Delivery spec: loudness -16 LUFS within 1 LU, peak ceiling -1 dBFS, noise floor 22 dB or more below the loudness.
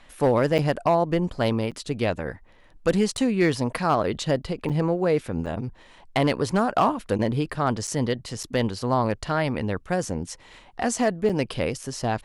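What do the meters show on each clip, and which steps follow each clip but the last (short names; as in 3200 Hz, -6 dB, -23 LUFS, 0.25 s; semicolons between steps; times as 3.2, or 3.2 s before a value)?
clipped 0.3%; flat tops at -12.5 dBFS; dropouts 8; longest dropout 6.8 ms; loudness -25.0 LUFS; peak -12.5 dBFS; loudness target -16.0 LUFS
-> clip repair -12.5 dBFS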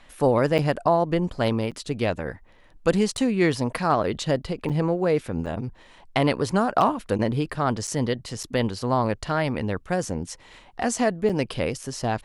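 clipped 0.0%; dropouts 8; longest dropout 6.8 ms
-> interpolate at 0.58/1.71/3.17/4.69/5.46/7.87/8.43/11.29, 6.8 ms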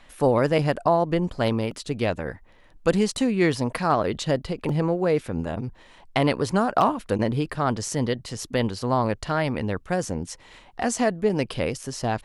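dropouts 0; loudness -25.0 LUFS; peak -6.0 dBFS; loudness target -16.0 LUFS
-> gain +9 dB; limiter -1 dBFS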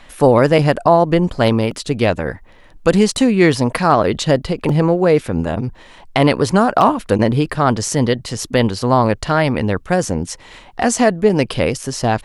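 loudness -16.0 LUFS; peak -1.0 dBFS; noise floor -44 dBFS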